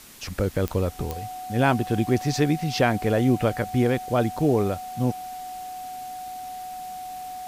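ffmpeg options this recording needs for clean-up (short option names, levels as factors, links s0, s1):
-af "adeclick=t=4,bandreject=f=740:w=30,afwtdn=0.005"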